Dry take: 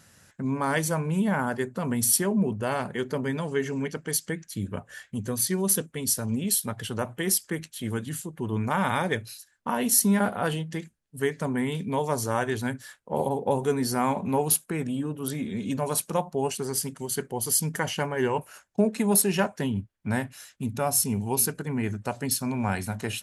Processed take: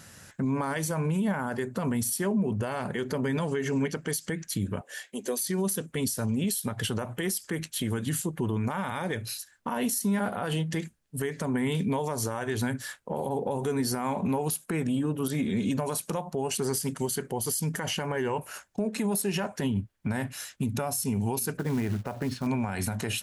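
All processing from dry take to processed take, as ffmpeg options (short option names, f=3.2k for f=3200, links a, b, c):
-filter_complex "[0:a]asettb=1/sr,asplit=3[a][b][c];[a]atrim=end=4.814[d];[b]atrim=start=4.81:end=5.47,asetpts=PTS-STARTPTS,afade=t=in:d=0.004:c=qsin,afade=t=out:st=0.656:d=0.004:c=qsin,highpass=f=320:w=0.5412,highpass=f=320:w=1.3066,equalizer=f=1.3k:w=1.6:g=-8.5[e];[c]atrim=start=5.466[f];[d][e]acrossfade=d=0.004:c1=hsin:c2=qsin[g];[g][f]acrossfade=d=0.004:c1=qsin:c2=hsin,asettb=1/sr,asplit=3[h][i][j];[h]atrim=end=21.574[k];[i]atrim=start=21.57:end=22.47,asetpts=PTS-STARTPTS,afade=t=in:d=0.004:c=qsin,afade=t=out:st=0.896:d=0.004:c=qsin,lowpass=2k,acompressor=threshold=-30dB:ratio=5:attack=3.2:release=140:knee=1:detection=peak,acrusher=bits=5:mode=log:mix=0:aa=0.000001[l];[j]atrim=start=22.466[m];[k][l]acrossfade=d=0.004:c1=hsin:c2=qsin[n];[n][m]acrossfade=d=0.004:c1=qsin:c2=hsin,acompressor=threshold=-26dB:ratio=4,alimiter=level_in=2.5dB:limit=-24dB:level=0:latency=1:release=97,volume=-2.5dB,volume=6.5dB"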